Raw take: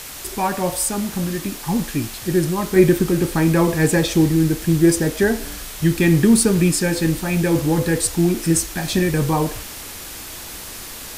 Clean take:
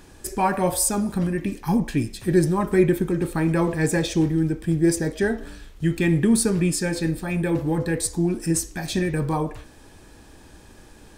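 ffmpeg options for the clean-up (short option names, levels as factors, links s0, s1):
-af "afwtdn=0.022,asetnsamples=n=441:p=0,asendcmd='2.76 volume volume -5dB',volume=1"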